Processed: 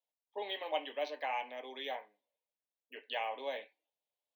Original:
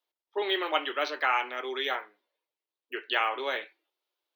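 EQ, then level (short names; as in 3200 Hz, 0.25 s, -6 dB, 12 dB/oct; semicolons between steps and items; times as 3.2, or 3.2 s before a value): high shelf 3000 Hz -7 dB; bell 4800 Hz -4 dB 0.77 oct; fixed phaser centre 360 Hz, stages 6; -3.5 dB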